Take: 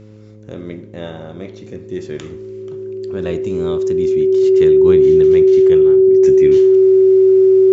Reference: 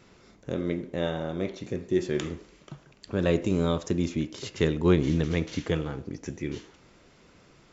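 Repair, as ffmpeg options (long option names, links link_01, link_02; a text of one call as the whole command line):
ffmpeg -i in.wav -af "bandreject=frequency=106.5:width_type=h:width=4,bandreject=frequency=213:width_type=h:width=4,bandreject=frequency=319.5:width_type=h:width=4,bandreject=frequency=426:width_type=h:width=4,bandreject=frequency=532.5:width_type=h:width=4,bandreject=frequency=380:width=30,asetnsamples=nb_out_samples=441:pad=0,asendcmd='6.22 volume volume -8.5dB',volume=0dB" out.wav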